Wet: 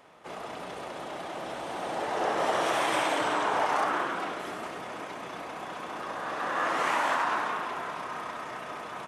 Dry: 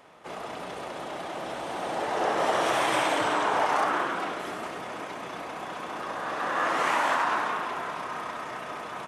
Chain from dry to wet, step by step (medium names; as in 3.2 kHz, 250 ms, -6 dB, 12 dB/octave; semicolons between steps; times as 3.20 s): 2.66–3.27 s: high-pass 120 Hz; trim -2 dB